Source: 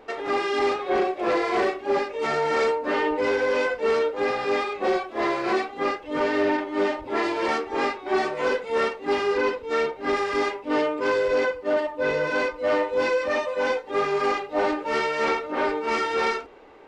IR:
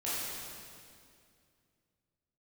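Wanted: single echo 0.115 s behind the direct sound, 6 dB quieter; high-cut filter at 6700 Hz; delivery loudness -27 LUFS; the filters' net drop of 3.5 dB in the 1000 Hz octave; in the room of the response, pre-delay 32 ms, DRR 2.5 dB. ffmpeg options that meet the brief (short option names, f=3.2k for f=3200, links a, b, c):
-filter_complex "[0:a]lowpass=6.7k,equalizer=f=1k:t=o:g=-4.5,aecho=1:1:115:0.501,asplit=2[a][b];[1:a]atrim=start_sample=2205,adelay=32[c];[b][c]afir=irnorm=-1:irlink=0,volume=-8.5dB[d];[a][d]amix=inputs=2:normalize=0,volume=-4dB"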